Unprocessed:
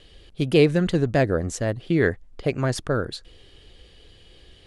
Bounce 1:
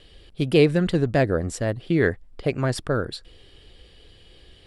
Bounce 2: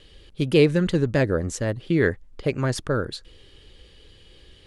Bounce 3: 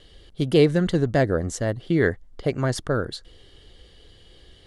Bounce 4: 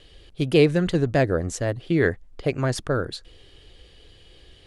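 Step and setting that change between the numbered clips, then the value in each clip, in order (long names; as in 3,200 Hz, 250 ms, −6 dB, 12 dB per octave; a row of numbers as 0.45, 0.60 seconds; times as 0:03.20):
notch filter, centre frequency: 6,400, 700, 2,500, 210 Hertz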